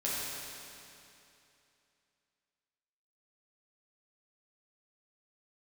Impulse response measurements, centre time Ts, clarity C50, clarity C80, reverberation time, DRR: 177 ms, -3.5 dB, -1.5 dB, 2.8 s, -8.0 dB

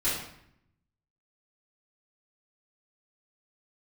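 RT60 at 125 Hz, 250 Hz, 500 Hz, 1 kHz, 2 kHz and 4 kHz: 1.2 s, 1.0 s, 0.70 s, 0.70 s, 0.70 s, 0.55 s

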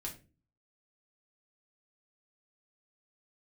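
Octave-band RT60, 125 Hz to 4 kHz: 0.60 s, 0.55 s, 0.40 s, 0.25 s, 0.30 s, 0.25 s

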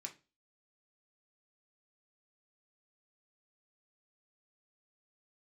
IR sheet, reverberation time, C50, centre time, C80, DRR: 0.30 s, 15.0 dB, 9 ms, 22.5 dB, 1.5 dB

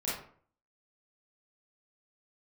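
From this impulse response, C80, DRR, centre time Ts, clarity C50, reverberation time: 7.0 dB, -9.0 dB, 53 ms, 1.0 dB, 0.50 s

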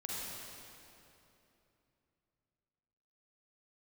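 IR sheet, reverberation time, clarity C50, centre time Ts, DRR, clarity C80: 3.0 s, -4.5 dB, 190 ms, -5.5 dB, -2.5 dB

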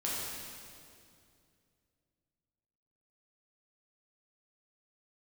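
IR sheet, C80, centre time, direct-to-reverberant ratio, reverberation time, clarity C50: -0.5 dB, 140 ms, -7.0 dB, 2.4 s, -2.5 dB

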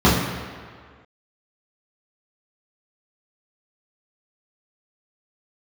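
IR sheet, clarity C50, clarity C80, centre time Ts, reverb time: 2.0 dB, 4.0 dB, 74 ms, 1.8 s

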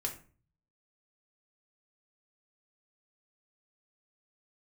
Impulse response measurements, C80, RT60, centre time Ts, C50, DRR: 15.5 dB, 0.40 s, 14 ms, 10.5 dB, 0.0 dB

